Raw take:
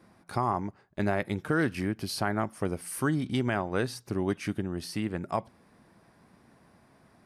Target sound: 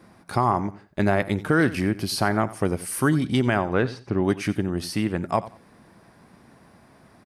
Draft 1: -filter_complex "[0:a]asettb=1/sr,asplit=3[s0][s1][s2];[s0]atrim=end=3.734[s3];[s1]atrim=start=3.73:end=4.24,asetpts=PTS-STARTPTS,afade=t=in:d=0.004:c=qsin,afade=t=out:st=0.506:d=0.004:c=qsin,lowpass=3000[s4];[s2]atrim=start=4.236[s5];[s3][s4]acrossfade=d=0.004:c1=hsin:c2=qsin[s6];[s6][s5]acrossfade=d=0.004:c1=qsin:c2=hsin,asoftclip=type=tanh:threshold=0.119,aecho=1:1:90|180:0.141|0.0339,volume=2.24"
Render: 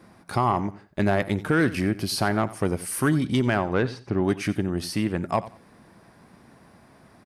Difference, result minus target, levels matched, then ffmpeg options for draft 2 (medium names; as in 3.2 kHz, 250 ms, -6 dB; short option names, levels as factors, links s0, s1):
saturation: distortion +17 dB
-filter_complex "[0:a]asettb=1/sr,asplit=3[s0][s1][s2];[s0]atrim=end=3.734[s3];[s1]atrim=start=3.73:end=4.24,asetpts=PTS-STARTPTS,afade=t=in:d=0.004:c=qsin,afade=t=out:st=0.506:d=0.004:c=qsin,lowpass=3000[s4];[s2]atrim=start=4.236[s5];[s3][s4]acrossfade=d=0.004:c1=hsin:c2=qsin[s6];[s6][s5]acrossfade=d=0.004:c1=qsin:c2=hsin,asoftclip=type=tanh:threshold=0.355,aecho=1:1:90|180:0.141|0.0339,volume=2.24"